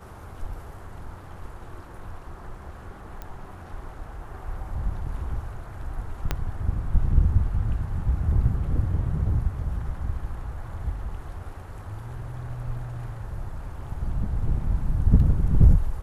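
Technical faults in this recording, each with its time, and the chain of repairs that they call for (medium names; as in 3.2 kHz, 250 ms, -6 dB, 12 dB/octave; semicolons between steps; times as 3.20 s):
3.22 s: pop -22 dBFS
6.31 s: pop -10 dBFS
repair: de-click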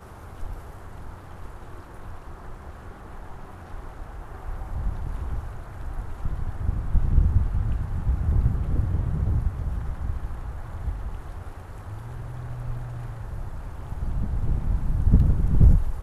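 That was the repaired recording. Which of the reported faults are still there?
6.31 s: pop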